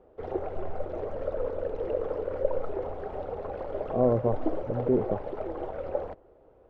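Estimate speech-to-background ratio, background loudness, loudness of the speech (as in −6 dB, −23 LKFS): 5.0 dB, −34.0 LKFS, −29.0 LKFS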